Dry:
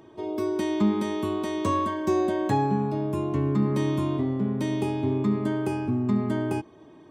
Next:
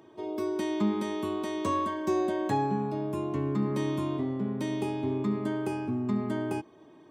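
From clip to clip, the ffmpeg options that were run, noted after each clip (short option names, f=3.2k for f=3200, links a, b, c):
-af "highpass=f=160:p=1,volume=-3dB"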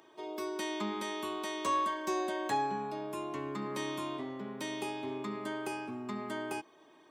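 -af "highpass=f=1.2k:p=1,volume=3dB"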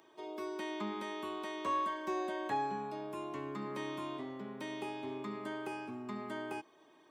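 -filter_complex "[0:a]acrossover=split=3200[a][b];[b]acompressor=threshold=-55dB:ratio=4:attack=1:release=60[c];[a][c]amix=inputs=2:normalize=0,volume=-3dB"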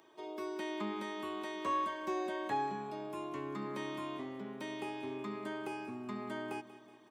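-af "aecho=1:1:186|372|558|744|930:0.158|0.0872|0.0479|0.0264|0.0145"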